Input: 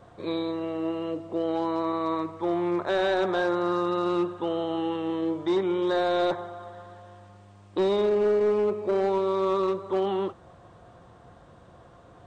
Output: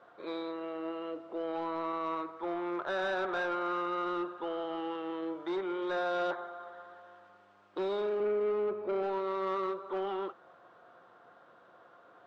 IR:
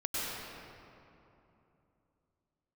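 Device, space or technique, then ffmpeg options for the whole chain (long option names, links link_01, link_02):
intercom: -filter_complex "[0:a]asettb=1/sr,asplit=3[link_01][link_02][link_03];[link_01]atrim=end=8.204[link_04];[link_02]atrim=start=8.2:end=9.03,asetpts=PTS-STARTPTS,afade=type=in:duration=0.004:curve=qsin,afade=type=out:start_time=0.826:duration=0.004:curve=qsin,aemphasis=mode=reproduction:type=bsi[link_05];[link_03]atrim=start=9.026[link_06];[link_04][link_05]acrossfade=duration=0.004:curve1=hsin:curve2=qsin[link_07];[link_07][link_06]acrossfade=duration=0.004:curve1=qsin:curve2=hsin,highpass=370,lowpass=4000,equalizer=frequency=1400:width_type=o:width=0.34:gain=9.5,asoftclip=type=tanh:threshold=-20dB,volume=-5.5dB"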